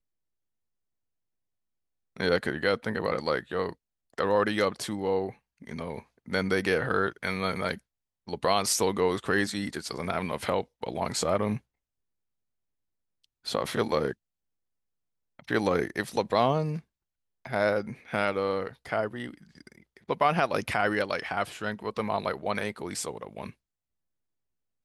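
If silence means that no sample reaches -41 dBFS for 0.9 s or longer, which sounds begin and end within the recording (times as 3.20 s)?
2.17–11.58 s
13.46–14.13 s
15.39–23.50 s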